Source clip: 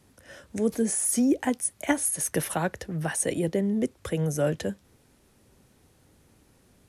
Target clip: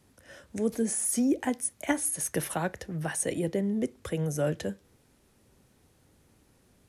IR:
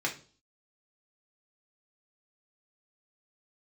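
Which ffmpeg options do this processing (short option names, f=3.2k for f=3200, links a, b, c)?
-filter_complex "[0:a]asplit=2[a][b];[1:a]atrim=start_sample=2205,adelay=27[c];[b][c]afir=irnorm=-1:irlink=0,volume=-26.5dB[d];[a][d]amix=inputs=2:normalize=0,volume=-3dB"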